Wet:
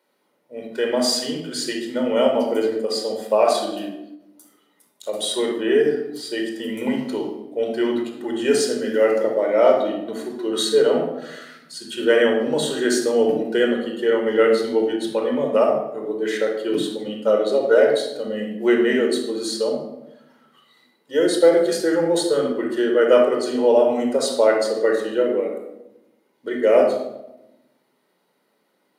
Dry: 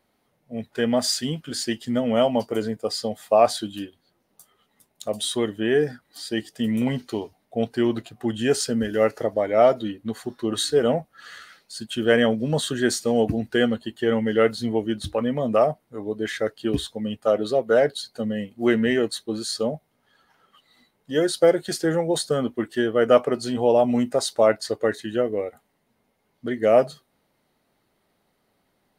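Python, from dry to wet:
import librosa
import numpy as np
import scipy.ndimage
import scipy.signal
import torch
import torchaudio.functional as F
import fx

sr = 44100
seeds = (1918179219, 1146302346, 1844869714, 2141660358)

y = scipy.signal.sosfilt(scipy.signal.butter(4, 230.0, 'highpass', fs=sr, output='sos'), x)
y = fx.room_shoebox(y, sr, seeds[0], volume_m3=3100.0, walls='furnished', distance_m=4.7)
y = fx.end_taper(y, sr, db_per_s=210.0)
y = y * librosa.db_to_amplitude(-1.5)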